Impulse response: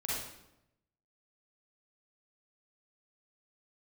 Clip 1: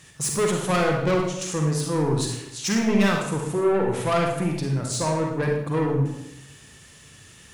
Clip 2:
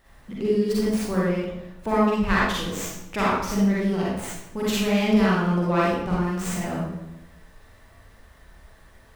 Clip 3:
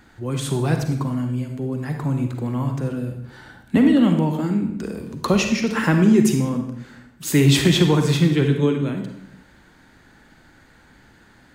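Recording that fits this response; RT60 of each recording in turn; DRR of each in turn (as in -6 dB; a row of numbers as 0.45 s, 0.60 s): 2; 0.85 s, 0.85 s, 0.85 s; 0.5 dB, -7.0 dB, 4.5 dB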